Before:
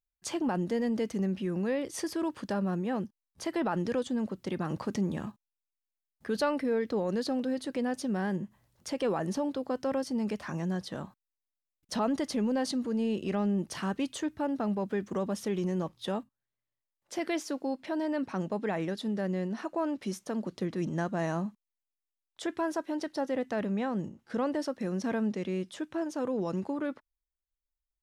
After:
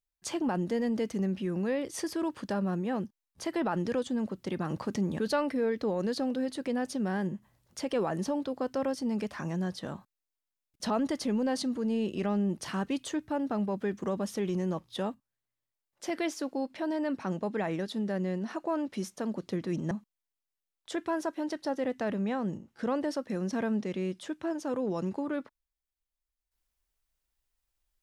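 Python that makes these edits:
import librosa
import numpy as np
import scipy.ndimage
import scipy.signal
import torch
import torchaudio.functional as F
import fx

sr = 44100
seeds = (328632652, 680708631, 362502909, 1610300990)

y = fx.edit(x, sr, fx.cut(start_s=5.19, length_s=1.09),
    fx.cut(start_s=21.0, length_s=0.42), tone=tone)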